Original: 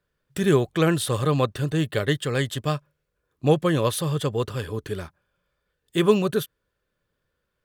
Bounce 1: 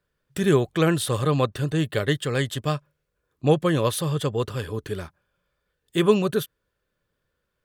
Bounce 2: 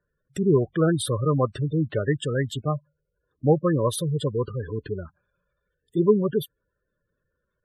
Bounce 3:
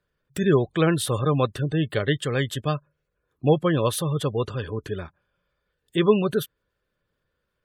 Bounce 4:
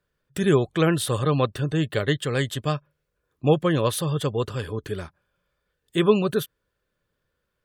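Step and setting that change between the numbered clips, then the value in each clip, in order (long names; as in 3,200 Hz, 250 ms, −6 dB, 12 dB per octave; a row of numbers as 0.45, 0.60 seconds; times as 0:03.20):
gate on every frequency bin, under each frame's peak: −55, −15, −30, −40 decibels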